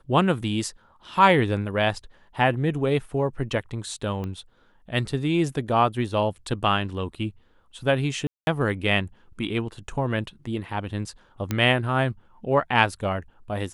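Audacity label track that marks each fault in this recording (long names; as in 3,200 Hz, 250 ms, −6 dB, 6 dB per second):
4.240000	4.240000	click −21 dBFS
8.270000	8.470000	drop-out 201 ms
11.510000	11.510000	click −11 dBFS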